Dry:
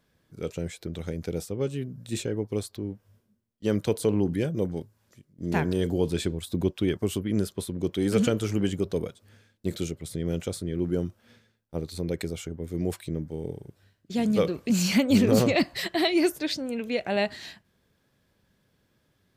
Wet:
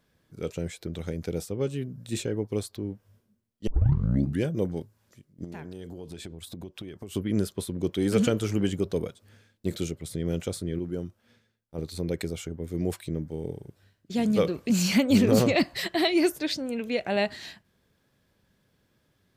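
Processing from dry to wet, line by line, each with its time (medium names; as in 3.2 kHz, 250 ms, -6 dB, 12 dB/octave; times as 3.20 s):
3.67 s: tape start 0.75 s
5.44–7.15 s: compression 8:1, threshold -36 dBFS
10.79–11.78 s: gain -5.5 dB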